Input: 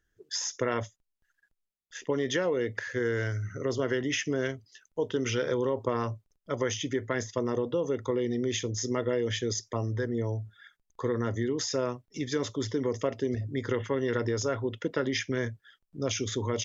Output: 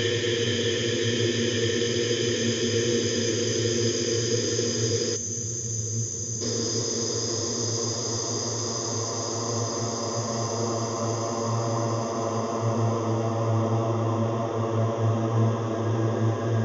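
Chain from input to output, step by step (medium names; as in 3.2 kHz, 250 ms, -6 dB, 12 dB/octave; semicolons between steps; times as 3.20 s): echo that smears into a reverb 1542 ms, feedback 58%, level -16 dB; Paulstretch 33×, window 0.50 s, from 9.37 s; time-frequency box 5.16–6.41 s, 230–5900 Hz -13 dB; trim +6 dB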